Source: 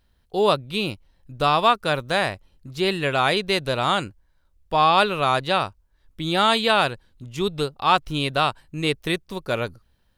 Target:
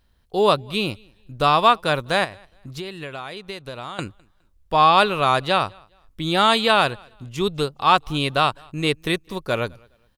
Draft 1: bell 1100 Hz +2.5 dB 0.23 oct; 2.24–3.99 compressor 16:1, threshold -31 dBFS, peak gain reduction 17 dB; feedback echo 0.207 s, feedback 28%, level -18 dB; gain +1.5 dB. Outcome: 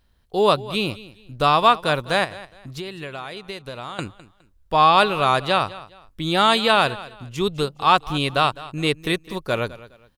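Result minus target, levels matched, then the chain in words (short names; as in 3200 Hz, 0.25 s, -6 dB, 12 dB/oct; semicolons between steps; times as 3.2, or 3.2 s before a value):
echo-to-direct +10.5 dB
bell 1100 Hz +2.5 dB 0.23 oct; 2.24–3.99 compressor 16:1, threshold -31 dBFS, peak gain reduction 17 dB; feedback echo 0.207 s, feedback 28%, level -28.5 dB; gain +1.5 dB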